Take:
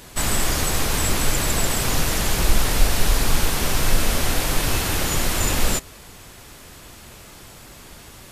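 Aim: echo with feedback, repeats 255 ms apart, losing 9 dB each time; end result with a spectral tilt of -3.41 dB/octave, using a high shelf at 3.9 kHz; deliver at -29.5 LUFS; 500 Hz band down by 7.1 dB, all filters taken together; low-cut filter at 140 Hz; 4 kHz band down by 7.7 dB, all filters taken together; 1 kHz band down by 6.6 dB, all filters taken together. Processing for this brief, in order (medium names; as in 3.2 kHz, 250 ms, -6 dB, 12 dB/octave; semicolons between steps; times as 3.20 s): high-pass 140 Hz; peaking EQ 500 Hz -7.5 dB; peaking EQ 1 kHz -5.5 dB; treble shelf 3.9 kHz -8 dB; peaking EQ 4 kHz -4.5 dB; feedback delay 255 ms, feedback 35%, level -9 dB; trim -1.5 dB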